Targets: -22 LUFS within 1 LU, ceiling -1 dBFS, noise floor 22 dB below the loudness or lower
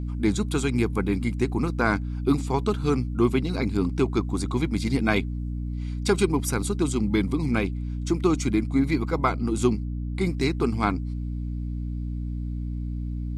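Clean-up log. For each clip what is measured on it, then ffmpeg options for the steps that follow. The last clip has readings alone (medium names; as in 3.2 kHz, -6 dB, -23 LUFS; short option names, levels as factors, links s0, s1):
hum 60 Hz; highest harmonic 300 Hz; hum level -27 dBFS; loudness -26.0 LUFS; peak level -8.5 dBFS; loudness target -22.0 LUFS
-> -af "bandreject=f=60:t=h:w=4,bandreject=f=120:t=h:w=4,bandreject=f=180:t=h:w=4,bandreject=f=240:t=h:w=4,bandreject=f=300:t=h:w=4"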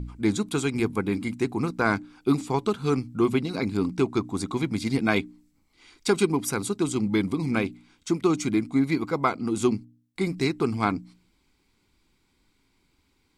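hum not found; loudness -26.5 LUFS; peak level -8.0 dBFS; loudness target -22.0 LUFS
-> -af "volume=1.68"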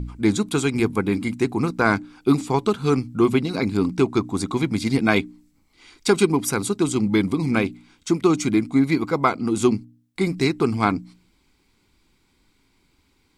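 loudness -22.0 LUFS; peak level -3.5 dBFS; noise floor -64 dBFS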